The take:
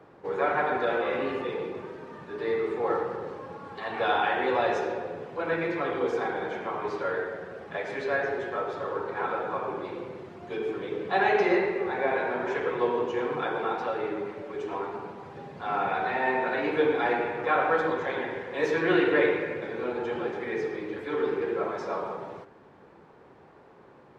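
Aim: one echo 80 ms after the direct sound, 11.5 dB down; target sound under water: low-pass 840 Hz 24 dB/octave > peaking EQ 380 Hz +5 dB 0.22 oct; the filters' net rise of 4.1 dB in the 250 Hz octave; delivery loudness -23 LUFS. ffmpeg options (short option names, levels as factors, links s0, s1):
-af "lowpass=f=840:w=0.5412,lowpass=f=840:w=1.3066,equalizer=f=250:t=o:g=3.5,equalizer=f=380:t=o:w=0.22:g=5,aecho=1:1:80:0.266,volume=1.68"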